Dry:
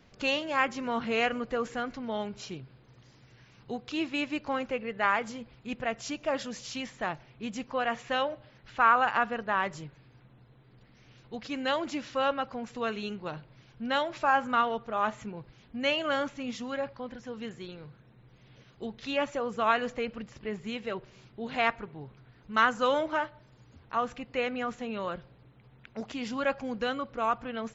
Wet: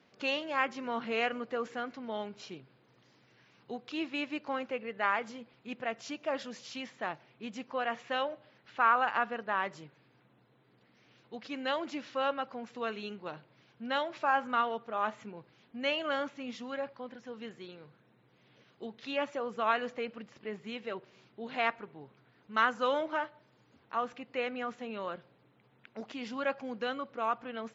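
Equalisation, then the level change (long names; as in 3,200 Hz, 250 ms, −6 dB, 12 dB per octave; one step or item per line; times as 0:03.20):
band-pass filter 210–5,400 Hz
−3.5 dB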